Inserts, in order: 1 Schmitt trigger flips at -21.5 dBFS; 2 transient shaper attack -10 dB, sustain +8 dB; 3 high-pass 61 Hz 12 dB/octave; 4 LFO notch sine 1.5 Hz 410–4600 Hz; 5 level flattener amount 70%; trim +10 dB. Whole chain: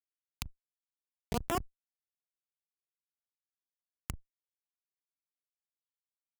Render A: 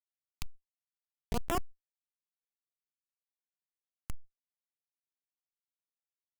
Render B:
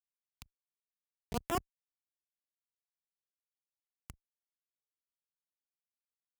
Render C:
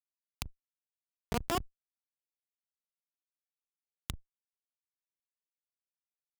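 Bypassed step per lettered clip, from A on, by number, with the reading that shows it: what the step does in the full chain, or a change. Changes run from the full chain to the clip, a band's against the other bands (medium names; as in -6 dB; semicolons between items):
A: 3, crest factor change -4.0 dB; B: 5, crest factor change -2.0 dB; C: 4, 4 kHz band +3.0 dB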